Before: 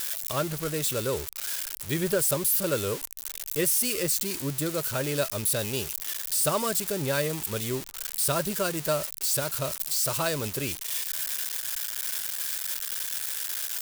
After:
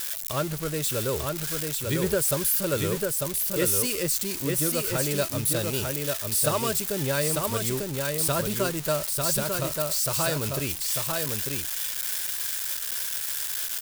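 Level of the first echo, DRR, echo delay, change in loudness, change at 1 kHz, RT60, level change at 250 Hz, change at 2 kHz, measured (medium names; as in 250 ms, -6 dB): -3.5 dB, no reverb, 896 ms, +1.5 dB, +1.5 dB, no reverb, +2.5 dB, +1.5 dB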